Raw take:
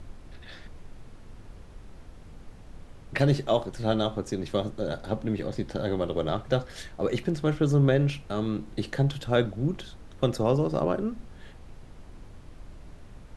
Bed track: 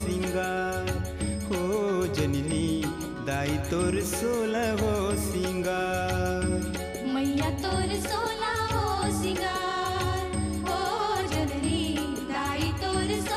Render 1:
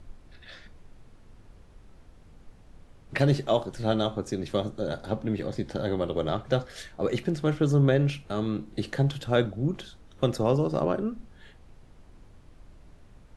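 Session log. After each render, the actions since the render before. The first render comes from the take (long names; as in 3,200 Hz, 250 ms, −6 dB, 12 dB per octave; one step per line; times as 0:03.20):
noise reduction from a noise print 6 dB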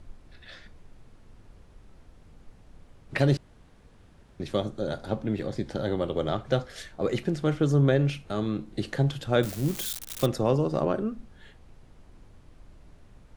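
0:03.37–0:04.40: fill with room tone
0:09.43–0:10.26: spike at every zero crossing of −23.5 dBFS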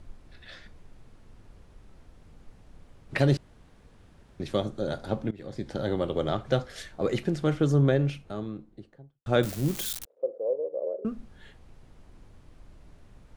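0:05.31–0:05.99: fade in equal-power, from −21.5 dB
0:07.60–0:09.26: fade out and dull
0:10.05–0:11.05: flat-topped band-pass 510 Hz, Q 3.6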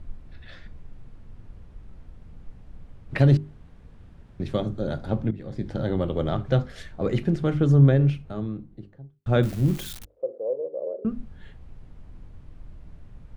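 bass and treble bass +9 dB, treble −7 dB
mains-hum notches 50/100/150/200/250/300/350/400 Hz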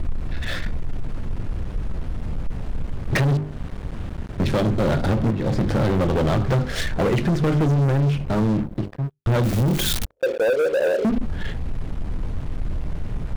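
downward compressor 6 to 1, threshold −27 dBFS, peak gain reduction 15 dB
leveller curve on the samples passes 5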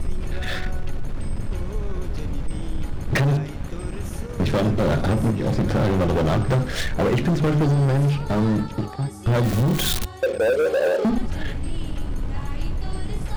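mix in bed track −10.5 dB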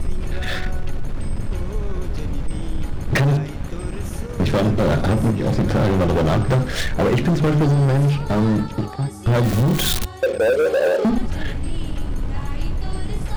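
level +2.5 dB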